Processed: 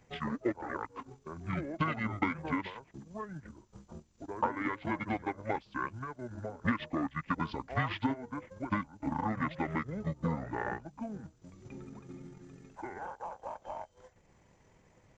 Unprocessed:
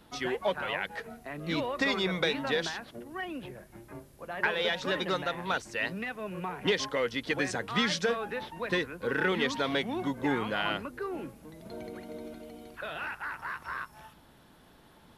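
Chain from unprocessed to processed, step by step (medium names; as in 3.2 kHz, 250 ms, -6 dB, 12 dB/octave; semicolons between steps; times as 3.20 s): transient shaper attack +4 dB, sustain -8 dB; pitch shift -9.5 st; trim -5 dB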